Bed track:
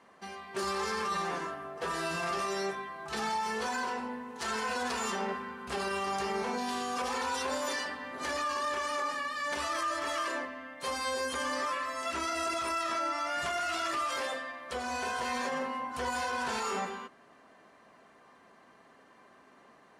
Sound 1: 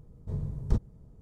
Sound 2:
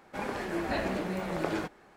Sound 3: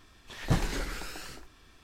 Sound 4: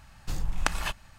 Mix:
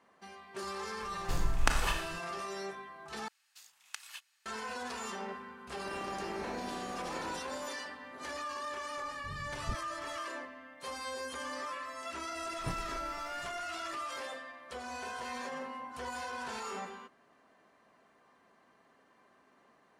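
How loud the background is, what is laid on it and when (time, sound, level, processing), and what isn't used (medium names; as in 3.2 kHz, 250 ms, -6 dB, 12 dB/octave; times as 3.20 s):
bed track -7 dB
1.01 s: add 4 -2 dB + Schroeder reverb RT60 0.81 s, combs from 26 ms, DRR 3.5 dB
3.28 s: replace with 4 -9.5 dB + Bessel high-pass 2.8 kHz
5.72 s: add 2 -16.5 dB + spectral levelling over time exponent 0.4
8.97 s: add 1 -12.5 dB
12.16 s: add 3 -12.5 dB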